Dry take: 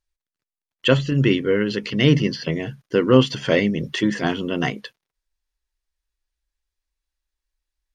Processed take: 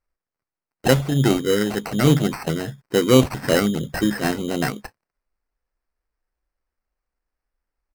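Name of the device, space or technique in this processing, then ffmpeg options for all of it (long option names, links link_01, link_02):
crushed at another speed: -af "asetrate=35280,aresample=44100,acrusher=samples=16:mix=1:aa=0.000001,asetrate=55125,aresample=44100"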